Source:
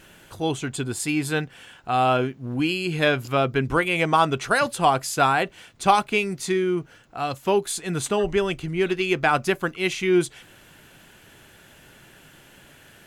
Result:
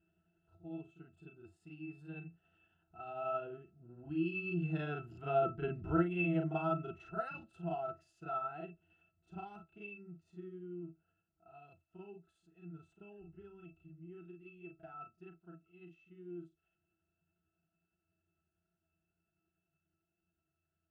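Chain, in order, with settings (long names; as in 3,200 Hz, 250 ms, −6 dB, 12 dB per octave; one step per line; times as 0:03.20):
source passing by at 0:03.46, 5 m/s, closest 2.3 metres
time stretch by overlap-add 1.6×, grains 182 ms
resonances in every octave E, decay 0.13 s
level +2 dB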